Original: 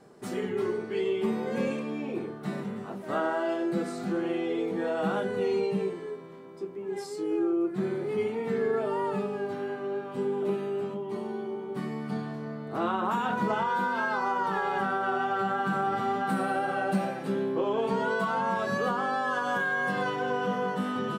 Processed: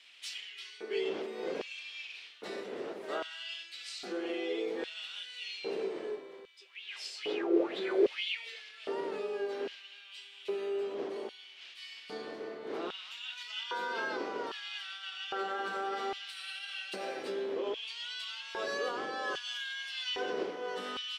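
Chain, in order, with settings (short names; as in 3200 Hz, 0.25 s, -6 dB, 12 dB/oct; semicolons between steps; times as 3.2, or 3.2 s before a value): wind noise 310 Hz -29 dBFS; compressor 6:1, threshold -26 dBFS, peak gain reduction 14 dB; weighting filter D; LFO high-pass square 0.62 Hz 420–2900 Hz; dynamic EQ 5200 Hz, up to +6 dB, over -52 dBFS, Q 2; 6.6–8.6 LFO bell 2.1 Hz 400–3700 Hz +17 dB; gain -8.5 dB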